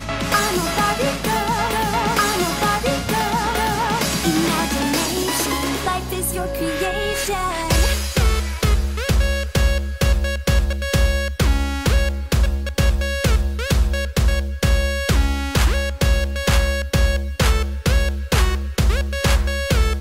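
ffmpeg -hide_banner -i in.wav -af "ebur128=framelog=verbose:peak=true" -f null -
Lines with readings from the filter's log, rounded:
Integrated loudness:
  I:         -19.9 LUFS
  Threshold: -29.9 LUFS
Loudness range:
  LRA:         1.4 LU
  Threshold: -39.9 LUFS
  LRA low:   -20.7 LUFS
  LRA high:  -19.3 LUFS
True peak:
  Peak:       -7.8 dBFS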